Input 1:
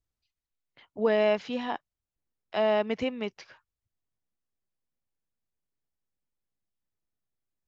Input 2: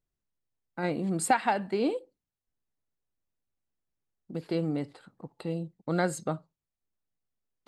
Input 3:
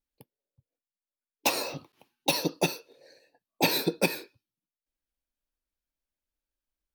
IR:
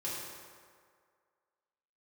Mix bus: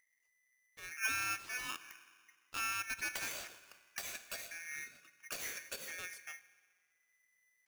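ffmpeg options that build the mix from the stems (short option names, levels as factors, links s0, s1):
-filter_complex "[0:a]acrossover=split=470[s0][s1];[s1]acompressor=threshold=0.0316:ratio=6[s2];[s0][s2]amix=inputs=2:normalize=0,volume=0.316,asplit=3[s3][s4][s5];[s4]volume=0.178[s6];[1:a]equalizer=f=125:t=o:w=1:g=11,equalizer=f=250:t=o:w=1:g=-8,equalizer=f=500:t=o:w=1:g=-9,equalizer=f=1000:t=o:w=1:g=-9,equalizer=f=2000:t=o:w=1:g=-5,equalizer=f=4000:t=o:w=1:g=-3,equalizer=f=8000:t=o:w=1:g=-3,acompressor=mode=upward:threshold=0.00224:ratio=2.5,volume=0.266,asplit=2[s7][s8];[s8]volume=0.126[s9];[2:a]acompressor=threshold=0.0251:ratio=3,alimiter=limit=0.0794:level=0:latency=1:release=220,acrossover=split=1700|4600[s10][s11][s12];[s10]acompressor=threshold=0.00224:ratio=4[s13];[s11]acompressor=threshold=0.00447:ratio=4[s14];[s12]acompressor=threshold=0.00562:ratio=4[s15];[s13][s14][s15]amix=inputs=3:normalize=0,adelay=1700,volume=0.944,asplit=2[s16][s17];[s17]volume=0.266[s18];[s5]apad=whole_len=338473[s19];[s7][s19]sidechaincompress=threshold=0.00141:ratio=8:attack=16:release=426[s20];[3:a]atrim=start_sample=2205[s21];[s6][s9][s18]amix=inputs=3:normalize=0[s22];[s22][s21]afir=irnorm=-1:irlink=0[s23];[s3][s20][s16][s23]amix=inputs=4:normalize=0,equalizer=f=170:t=o:w=0.24:g=-11.5,aeval=exprs='val(0)*sgn(sin(2*PI*2000*n/s))':c=same"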